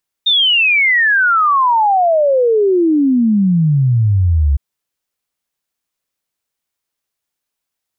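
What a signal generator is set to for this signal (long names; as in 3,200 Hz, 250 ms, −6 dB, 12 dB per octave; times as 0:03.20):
exponential sine sweep 3,700 Hz → 67 Hz 4.31 s −9 dBFS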